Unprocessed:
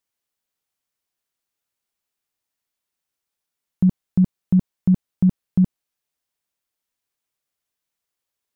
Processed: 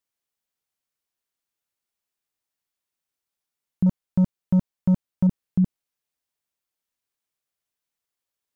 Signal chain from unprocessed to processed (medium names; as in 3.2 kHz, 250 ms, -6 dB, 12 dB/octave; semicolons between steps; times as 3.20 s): 3.86–5.27 s: waveshaping leveller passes 1; trim -3.5 dB